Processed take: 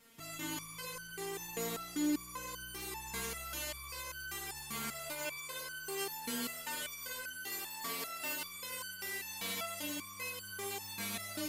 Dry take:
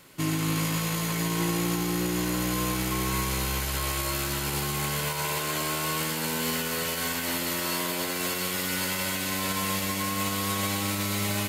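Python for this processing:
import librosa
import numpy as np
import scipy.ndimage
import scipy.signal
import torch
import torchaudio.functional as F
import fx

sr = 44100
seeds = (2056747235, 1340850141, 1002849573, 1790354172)

y = fx.resonator_held(x, sr, hz=5.1, low_hz=230.0, high_hz=1500.0)
y = F.gain(torch.from_numpy(y), 5.0).numpy()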